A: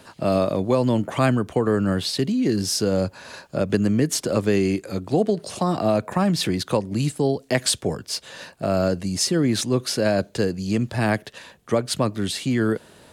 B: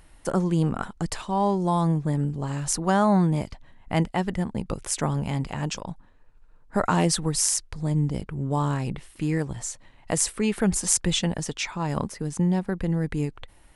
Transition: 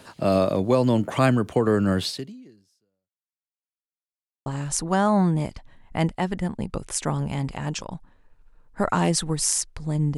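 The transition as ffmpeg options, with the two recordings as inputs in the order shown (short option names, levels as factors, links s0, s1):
-filter_complex "[0:a]apad=whole_dur=10.17,atrim=end=10.17,asplit=2[s0][s1];[s0]atrim=end=3.59,asetpts=PTS-STARTPTS,afade=t=out:st=2.04:d=1.55:c=exp[s2];[s1]atrim=start=3.59:end=4.46,asetpts=PTS-STARTPTS,volume=0[s3];[1:a]atrim=start=2.42:end=8.13,asetpts=PTS-STARTPTS,afade=t=in:d=0.004:c=hsin[s4];[s2][s3][s4]concat=n=3:v=0:a=1"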